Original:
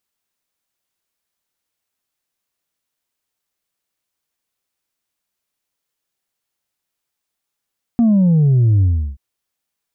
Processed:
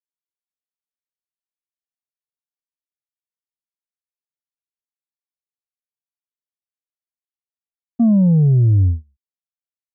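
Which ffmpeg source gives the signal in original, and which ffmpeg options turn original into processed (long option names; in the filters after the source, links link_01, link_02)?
-f lavfi -i "aevalsrc='0.316*clip((1.18-t)/0.35,0,1)*tanh(1.26*sin(2*PI*240*1.18/log(65/240)*(exp(log(65/240)*t/1.18)-1)))/tanh(1.26)':duration=1.18:sample_rate=44100"
-af "agate=range=-32dB:threshold=-16dB:ratio=16:detection=peak,aresample=22050,aresample=44100"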